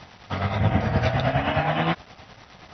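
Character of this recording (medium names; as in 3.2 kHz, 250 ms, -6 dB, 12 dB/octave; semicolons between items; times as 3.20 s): a quantiser's noise floor 8-bit, dither none; tremolo triangle 9.6 Hz, depth 60%; MP2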